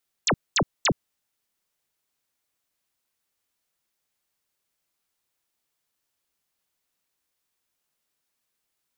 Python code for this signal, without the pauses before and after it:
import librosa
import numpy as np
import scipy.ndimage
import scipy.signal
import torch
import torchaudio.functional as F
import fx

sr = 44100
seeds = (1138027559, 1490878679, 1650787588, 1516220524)

y = fx.laser_zaps(sr, level_db=-18, start_hz=8400.0, end_hz=100.0, length_s=0.07, wave='sine', shots=3, gap_s=0.22)